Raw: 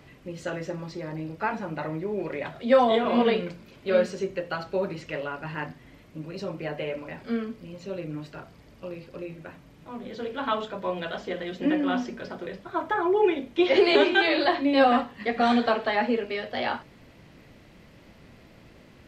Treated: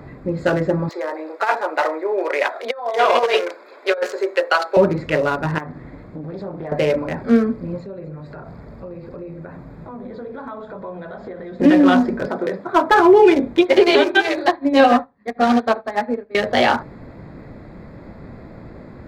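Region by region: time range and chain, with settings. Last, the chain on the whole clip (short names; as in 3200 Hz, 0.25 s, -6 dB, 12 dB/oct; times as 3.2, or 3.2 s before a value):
0.89–4.77 Bessel high-pass 660 Hz, order 8 + negative-ratio compressor -30 dBFS, ratio -0.5
5.58–6.72 de-hum 53 Hz, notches 8 + compressor 3:1, threshold -43 dBFS + Doppler distortion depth 0.35 ms
7.8–11.6 notch 300 Hz, Q 9.8 + compressor 4:1, threshold -46 dBFS + echo with dull and thin repeats by turns 0.121 s, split 860 Hz, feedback 54%, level -11 dB
12.27–13 HPF 220 Hz + hard clip -20.5 dBFS
13.61–16.35 echo 77 ms -11 dB + upward expander 2.5:1, over -36 dBFS
whole clip: Wiener smoothing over 15 samples; maximiser +17 dB; gain -2.5 dB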